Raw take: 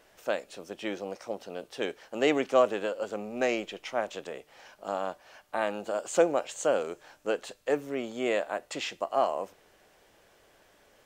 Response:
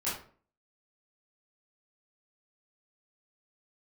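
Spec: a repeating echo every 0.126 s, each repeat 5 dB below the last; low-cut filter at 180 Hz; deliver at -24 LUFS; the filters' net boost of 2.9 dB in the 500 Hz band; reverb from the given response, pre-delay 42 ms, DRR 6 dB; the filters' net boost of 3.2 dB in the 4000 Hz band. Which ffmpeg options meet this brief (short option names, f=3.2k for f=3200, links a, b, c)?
-filter_complex "[0:a]highpass=180,equalizer=f=500:t=o:g=3.5,equalizer=f=4k:t=o:g=4.5,aecho=1:1:126|252|378|504|630|756|882:0.562|0.315|0.176|0.0988|0.0553|0.031|0.0173,asplit=2[a][b];[1:a]atrim=start_sample=2205,adelay=42[c];[b][c]afir=irnorm=-1:irlink=0,volume=-11.5dB[d];[a][d]amix=inputs=2:normalize=0,volume=2.5dB"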